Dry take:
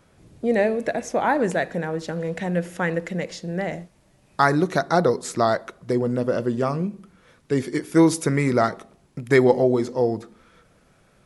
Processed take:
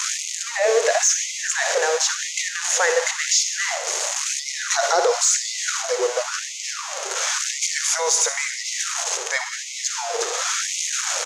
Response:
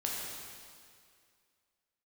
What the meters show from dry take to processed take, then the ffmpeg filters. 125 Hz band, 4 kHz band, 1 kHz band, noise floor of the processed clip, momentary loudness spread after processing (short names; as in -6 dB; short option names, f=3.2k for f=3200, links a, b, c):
under -40 dB, +15.5 dB, -1.0 dB, -31 dBFS, 7 LU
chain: -filter_complex "[0:a]aeval=exprs='val(0)+0.5*0.0596*sgn(val(0))':c=same,aecho=1:1:347:0.0794,asubboost=boost=2.5:cutoff=57,lowpass=f=6.6k:t=q:w=5.9,asplit=2[a][b];[1:a]atrim=start_sample=2205,atrim=end_sample=6615,adelay=58[c];[b][c]afir=irnorm=-1:irlink=0,volume=-12.5dB[d];[a][d]amix=inputs=2:normalize=0,aeval=exprs='0.841*(cos(1*acos(clip(val(0)/0.841,-1,1)))-cos(1*PI/2))+0.0133*(cos(7*acos(clip(val(0)/0.841,-1,1)))-cos(7*PI/2))':c=same,lowshelf=f=130:t=q:w=3:g=8,alimiter=limit=-14dB:level=0:latency=1:release=30,afftfilt=real='re*gte(b*sr/1024,370*pow(2000/370,0.5+0.5*sin(2*PI*0.95*pts/sr)))':imag='im*gte(b*sr/1024,370*pow(2000/370,0.5+0.5*sin(2*PI*0.95*pts/sr)))':win_size=1024:overlap=0.75,volume=6dB"